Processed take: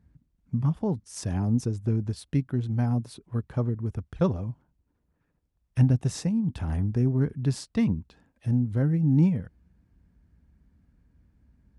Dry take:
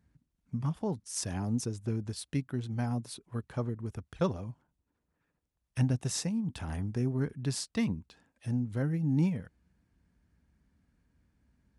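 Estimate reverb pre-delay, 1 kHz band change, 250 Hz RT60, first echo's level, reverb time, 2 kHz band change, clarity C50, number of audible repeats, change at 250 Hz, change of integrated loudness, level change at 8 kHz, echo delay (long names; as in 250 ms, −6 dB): no reverb audible, +2.5 dB, no reverb audible, no echo audible, no reverb audible, 0.0 dB, no reverb audible, no echo audible, +6.5 dB, +6.5 dB, −3.5 dB, no echo audible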